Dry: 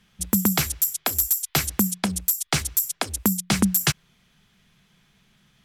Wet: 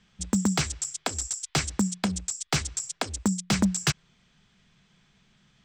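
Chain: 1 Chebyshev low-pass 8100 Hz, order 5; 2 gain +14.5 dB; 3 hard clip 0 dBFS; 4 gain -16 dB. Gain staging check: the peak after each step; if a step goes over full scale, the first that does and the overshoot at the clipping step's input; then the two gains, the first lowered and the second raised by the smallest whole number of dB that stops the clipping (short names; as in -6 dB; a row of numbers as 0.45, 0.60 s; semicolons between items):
-8.0, +6.5, 0.0, -16.0 dBFS; step 2, 6.5 dB; step 2 +7.5 dB, step 4 -9 dB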